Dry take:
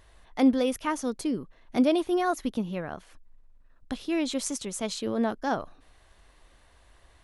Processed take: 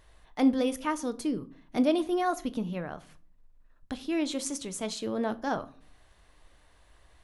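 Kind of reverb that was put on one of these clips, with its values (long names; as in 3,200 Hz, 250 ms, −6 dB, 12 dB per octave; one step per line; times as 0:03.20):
rectangular room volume 360 cubic metres, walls furnished, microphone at 0.48 metres
level −2.5 dB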